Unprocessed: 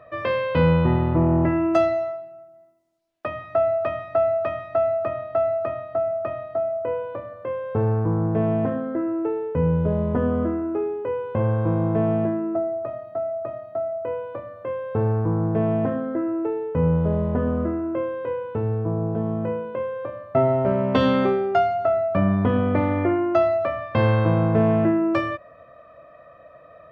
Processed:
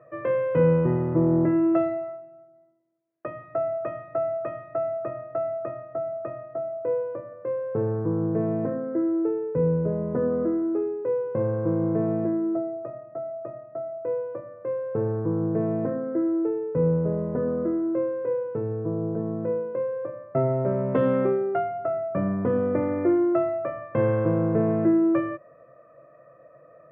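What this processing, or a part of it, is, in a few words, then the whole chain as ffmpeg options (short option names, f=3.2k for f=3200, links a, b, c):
bass cabinet: -af "highpass=80,equalizer=f=85:t=q:w=4:g=-10,equalizer=f=140:t=q:w=4:g=10,equalizer=f=340:t=q:w=4:g=8,equalizer=f=500:t=q:w=4:g=8,equalizer=f=810:t=q:w=4:g=-4,lowpass=f=2.1k:w=0.5412,lowpass=f=2.1k:w=1.3066,volume=-7dB"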